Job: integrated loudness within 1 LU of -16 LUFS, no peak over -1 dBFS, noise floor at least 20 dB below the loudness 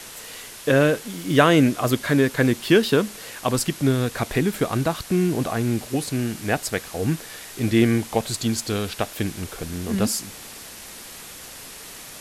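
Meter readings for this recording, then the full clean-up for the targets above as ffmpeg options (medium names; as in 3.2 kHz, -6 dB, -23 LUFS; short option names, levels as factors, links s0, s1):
noise floor -40 dBFS; noise floor target -43 dBFS; loudness -22.5 LUFS; peak level -4.0 dBFS; loudness target -16.0 LUFS
-> -af "afftdn=nr=6:nf=-40"
-af "volume=2.11,alimiter=limit=0.891:level=0:latency=1"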